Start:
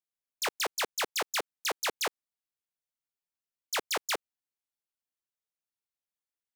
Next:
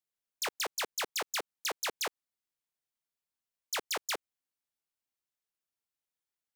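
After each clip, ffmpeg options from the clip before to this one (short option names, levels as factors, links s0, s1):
-af "acompressor=threshold=0.0282:ratio=6"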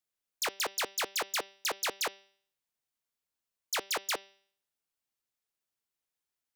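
-af "bandreject=f=195.6:t=h:w=4,bandreject=f=391.2:t=h:w=4,bandreject=f=586.8:t=h:w=4,bandreject=f=782.4:t=h:w=4,bandreject=f=978:t=h:w=4,bandreject=f=1173.6:t=h:w=4,bandreject=f=1369.2:t=h:w=4,bandreject=f=1564.8:t=h:w=4,bandreject=f=1760.4:t=h:w=4,bandreject=f=1956:t=h:w=4,bandreject=f=2151.6:t=h:w=4,bandreject=f=2347.2:t=h:w=4,bandreject=f=2542.8:t=h:w=4,bandreject=f=2738.4:t=h:w=4,bandreject=f=2934:t=h:w=4,bandreject=f=3129.6:t=h:w=4,bandreject=f=3325.2:t=h:w=4,bandreject=f=3520.8:t=h:w=4,bandreject=f=3716.4:t=h:w=4,bandreject=f=3912:t=h:w=4,bandreject=f=4107.6:t=h:w=4,bandreject=f=4303.2:t=h:w=4,bandreject=f=4498.8:t=h:w=4,bandreject=f=4694.4:t=h:w=4,bandreject=f=4890:t=h:w=4,bandreject=f=5085.6:t=h:w=4,bandreject=f=5281.2:t=h:w=4,bandreject=f=5476.8:t=h:w=4,bandreject=f=5672.4:t=h:w=4,bandreject=f=5868:t=h:w=4,volume=1.26"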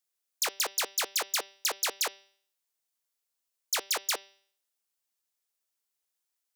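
-af "bass=f=250:g=-11,treble=f=4000:g=6"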